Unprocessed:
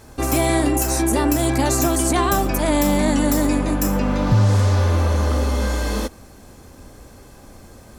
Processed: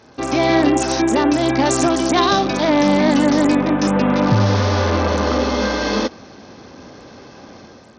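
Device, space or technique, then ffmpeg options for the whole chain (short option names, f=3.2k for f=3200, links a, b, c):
Bluetooth headset: -filter_complex "[0:a]asettb=1/sr,asplit=3[a][b][c];[a]atrim=end=2.174[d];[b]atrim=start=2.17:end=2.65,asetpts=PTS-STARTPTS,afade=t=in:d=0.004:c=qsin,afade=t=out:st=0.476:d=0.004:c=qsin,equalizer=f=3.8k:t=o:w=0.21:g=14[e];[c]atrim=start=2.646[f];[d][e]acrossfade=d=0.004:c1=hsin:c2=qsin[g];[g][f]acrossfade=d=0.004:c1=qsin:c2=hsin,highpass=160,dynaudnorm=f=110:g=7:m=7dB,aresample=16000,aresample=44100" -ar 48000 -c:a sbc -b:a 64k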